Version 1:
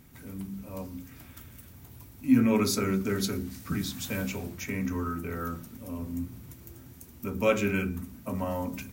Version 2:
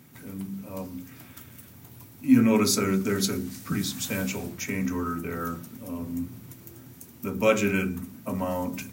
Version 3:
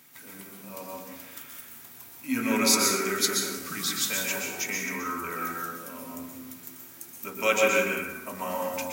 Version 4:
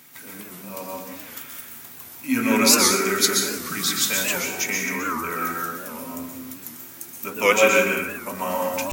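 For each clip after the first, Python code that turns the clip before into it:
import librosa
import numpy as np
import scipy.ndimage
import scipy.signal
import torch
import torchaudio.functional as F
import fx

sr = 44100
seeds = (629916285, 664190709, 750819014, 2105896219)

y1 = scipy.signal.sosfilt(scipy.signal.butter(4, 100.0, 'highpass', fs=sr, output='sos'), x)
y1 = fx.dynamic_eq(y1, sr, hz=7700.0, q=0.9, threshold_db=-52.0, ratio=4.0, max_db=4)
y1 = y1 * librosa.db_to_amplitude(3.0)
y2 = fx.highpass(y1, sr, hz=1400.0, slope=6)
y2 = fx.rev_plate(y2, sr, seeds[0], rt60_s=1.2, hf_ratio=0.45, predelay_ms=110, drr_db=-1.0)
y2 = y2 * librosa.db_to_amplitude(3.5)
y3 = fx.record_warp(y2, sr, rpm=78.0, depth_cents=160.0)
y3 = y3 * librosa.db_to_amplitude(6.0)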